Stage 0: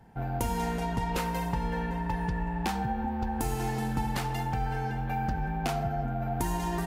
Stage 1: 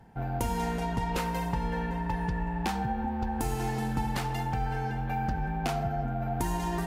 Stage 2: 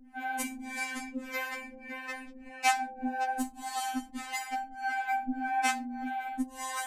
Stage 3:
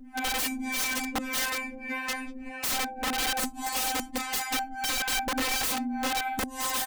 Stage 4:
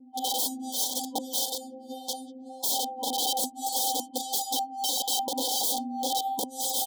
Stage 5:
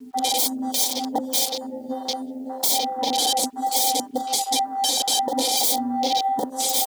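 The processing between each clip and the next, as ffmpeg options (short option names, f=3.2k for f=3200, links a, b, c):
-af "highshelf=f=11k:g=-3.5,areverse,acompressor=mode=upward:threshold=-37dB:ratio=2.5,areverse"
-filter_complex "[0:a]equalizer=f=250:t=o:w=1:g=5,equalizer=f=500:t=o:w=1:g=-7,equalizer=f=2k:t=o:w=1:g=8,equalizer=f=8k:t=o:w=1:g=11,acrossover=split=430[a][b];[a]aeval=exprs='val(0)*(1-1/2+1/2*cos(2*PI*1.7*n/s))':c=same[c];[b]aeval=exprs='val(0)*(1-1/2-1/2*cos(2*PI*1.7*n/s))':c=same[d];[c][d]amix=inputs=2:normalize=0,afftfilt=real='re*3.46*eq(mod(b,12),0)':imag='im*3.46*eq(mod(b,12),0)':win_size=2048:overlap=0.75,volume=4.5dB"
-af "aecho=1:1:6.9:0.31,aeval=exprs='(mod(35.5*val(0)+1,2)-1)/35.5':c=same,volume=7.5dB"
-af "anlmdn=0.00251,afftfilt=real='re*(1-between(b*sr/4096,990,3100))':imag='im*(1-between(b*sr/4096,990,3100))':win_size=4096:overlap=0.75,highpass=330,volume=2.5dB"
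-filter_complex "[0:a]afwtdn=0.0126,asplit=2[a][b];[b]acompressor=threshold=-36dB:ratio=16,volume=1dB[c];[a][c]amix=inputs=2:normalize=0,acrusher=bits=10:mix=0:aa=0.000001,volume=5dB"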